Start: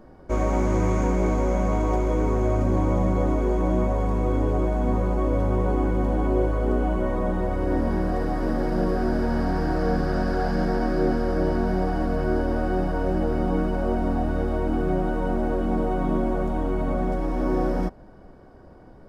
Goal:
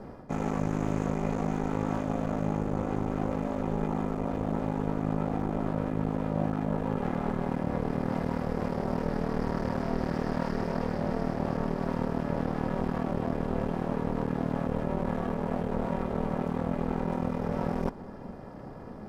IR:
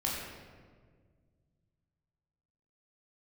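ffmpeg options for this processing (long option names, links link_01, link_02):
-af "areverse,acompressor=threshold=-30dB:ratio=6,areverse,aeval=exprs='clip(val(0),-1,0.00631)':channel_layout=same,aeval=exprs='val(0)*sin(2*PI*210*n/s)':channel_layout=same,volume=8dB"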